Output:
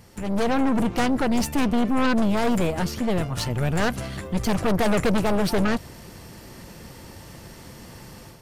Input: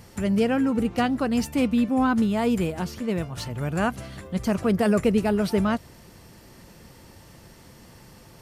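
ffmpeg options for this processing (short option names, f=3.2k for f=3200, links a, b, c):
-af "aeval=exprs='0.335*(cos(1*acos(clip(val(0)/0.335,-1,1)))-cos(1*PI/2))+0.0299*(cos(3*acos(clip(val(0)/0.335,-1,1)))-cos(3*PI/2))+0.0944*(cos(4*acos(clip(val(0)/0.335,-1,1)))-cos(4*PI/2))':c=same,asoftclip=type=tanh:threshold=-24dB,dynaudnorm=f=230:g=3:m=9dB"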